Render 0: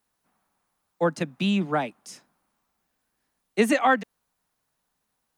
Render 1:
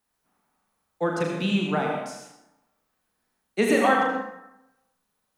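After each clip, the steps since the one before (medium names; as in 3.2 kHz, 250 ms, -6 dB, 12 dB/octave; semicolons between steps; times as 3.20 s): flutter echo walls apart 6.5 m, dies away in 0.37 s; reverberation RT60 0.90 s, pre-delay 68 ms, DRR 1.5 dB; trim -2.5 dB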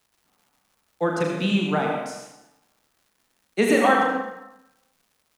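crackle 330 per s -54 dBFS; delay 219 ms -18.5 dB; trim +2 dB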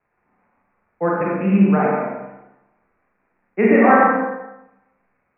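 local Wiener filter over 9 samples; steep low-pass 2.5 kHz 96 dB/octave; Schroeder reverb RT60 0.54 s, combs from 31 ms, DRR -2 dB; trim +1.5 dB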